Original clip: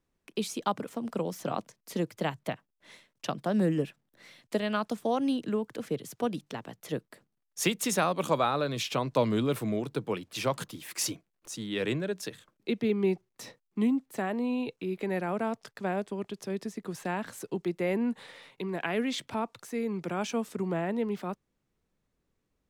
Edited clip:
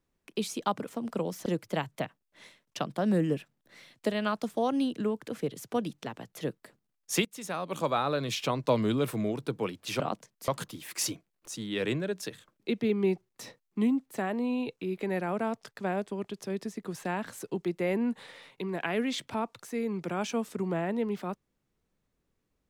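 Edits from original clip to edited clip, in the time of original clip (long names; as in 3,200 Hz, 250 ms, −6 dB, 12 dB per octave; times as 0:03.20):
0:01.46–0:01.94: move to 0:10.48
0:07.73–0:08.59: fade in, from −21.5 dB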